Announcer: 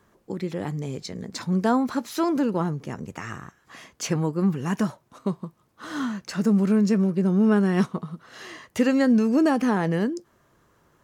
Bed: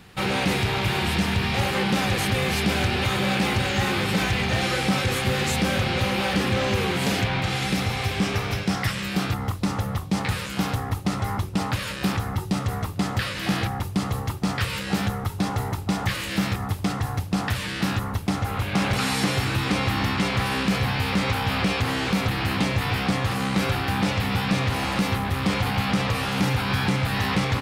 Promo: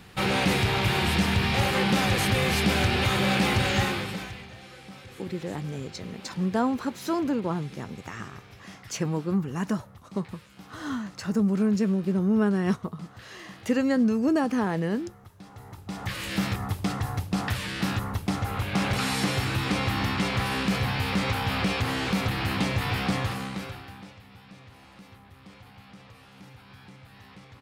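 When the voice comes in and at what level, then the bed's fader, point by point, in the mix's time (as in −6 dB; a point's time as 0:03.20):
4.90 s, −3.5 dB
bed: 0:03.79 −0.5 dB
0:04.56 −22.5 dB
0:15.45 −22.5 dB
0:16.26 −3 dB
0:23.21 −3 dB
0:24.22 −26 dB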